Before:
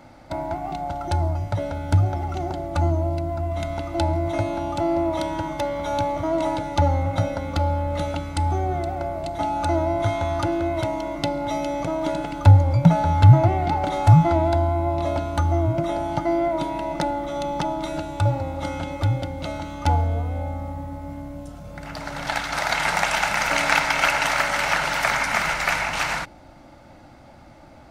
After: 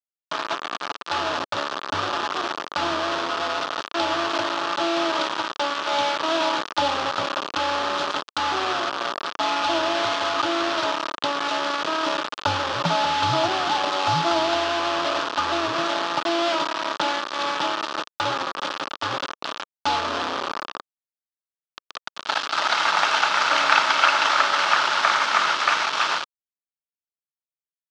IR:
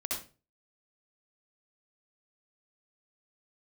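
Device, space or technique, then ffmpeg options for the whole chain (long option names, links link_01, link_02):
hand-held game console: -af "acrusher=bits=3:mix=0:aa=0.000001,highpass=420,equalizer=frequency=500:width_type=q:width=4:gain=-4,equalizer=frequency=740:width_type=q:width=4:gain=-5,equalizer=frequency=1200:width_type=q:width=4:gain=7,equalizer=frequency=2100:width_type=q:width=4:gain=-8,equalizer=frequency=3300:width_type=q:width=4:gain=3,lowpass=frequency=5200:width=0.5412,lowpass=frequency=5200:width=1.3066,volume=2dB"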